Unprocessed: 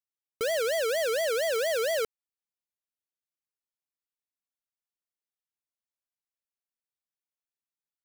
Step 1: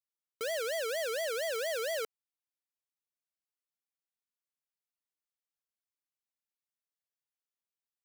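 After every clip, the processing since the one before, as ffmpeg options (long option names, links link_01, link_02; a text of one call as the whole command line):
ffmpeg -i in.wav -af "highpass=frequency=440:poles=1,volume=-5dB" out.wav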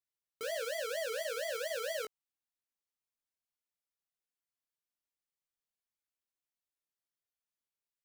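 ffmpeg -i in.wav -af "lowshelf=frequency=66:gain=6,flanger=delay=16.5:depth=4.7:speed=1.1" out.wav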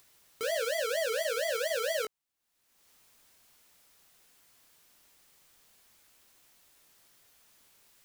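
ffmpeg -i in.wav -af "acompressor=mode=upward:threshold=-50dB:ratio=2.5,volume=6dB" out.wav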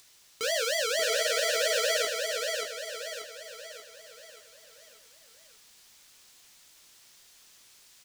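ffmpeg -i in.wav -filter_complex "[0:a]acrossover=split=6900[link_01][link_02];[link_01]crystalizer=i=4:c=0[link_03];[link_03][link_02]amix=inputs=2:normalize=0,aecho=1:1:584|1168|1752|2336|2920|3504:0.631|0.303|0.145|0.0698|0.0335|0.0161" out.wav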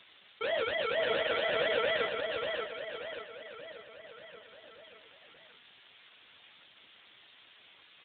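ffmpeg -i in.wav -af "acompressor=mode=upward:threshold=-39dB:ratio=2.5" -ar 8000 -c:a libspeex -b:a 8k out.spx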